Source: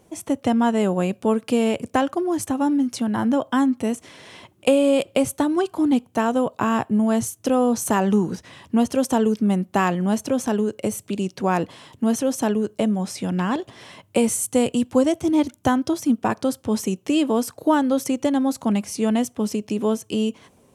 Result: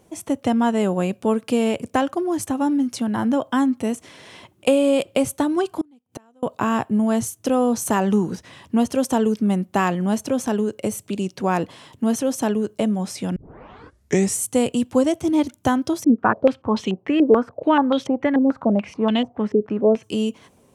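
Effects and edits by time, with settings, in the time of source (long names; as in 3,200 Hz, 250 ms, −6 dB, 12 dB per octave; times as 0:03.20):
0:05.81–0:06.43: gate with flip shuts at −24 dBFS, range −34 dB
0:13.36: tape start 1.03 s
0:16.04–0:20.03: low-pass on a step sequencer 6.9 Hz 440–3,400 Hz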